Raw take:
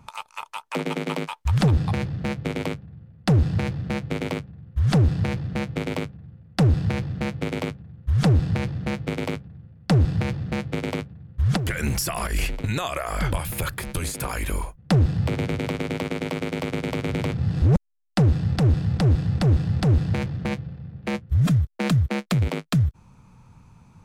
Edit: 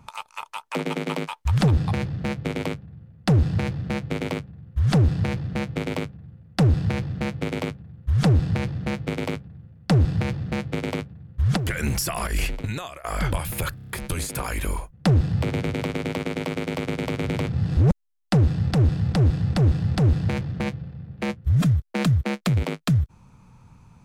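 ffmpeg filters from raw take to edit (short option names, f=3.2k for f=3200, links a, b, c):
-filter_complex "[0:a]asplit=7[a][b][c][d][e][f][g];[a]atrim=end=13.04,asetpts=PTS-STARTPTS,afade=t=out:st=12.52:d=0.52:silence=0.105925[h];[b]atrim=start=13.04:end=13.782,asetpts=PTS-STARTPTS,afade=t=in:d=0.004:c=hsin:silence=0.105925[i];[c]atrim=start=13.748:end=13.782[j];[d]atrim=start=13.748:end=13.782[k];[e]atrim=start=13.748:end=13.782[l];[f]atrim=start=13.748:end=13.782[m];[g]atrim=start=13.748[n];[h][i]concat=n=2:v=0:a=1[o];[o][j]acrossfade=d=0.004:c1=hsin:c2=hsin[p];[p][k]acrossfade=d=0.004:c1=hsin:c2=hsin[q];[q][l]acrossfade=d=0.004:c1=hsin:c2=hsin[r];[r][m]acrossfade=d=0.004:c1=hsin:c2=hsin[s];[s][n]acrossfade=d=0.004:c1=hsin:c2=hsin"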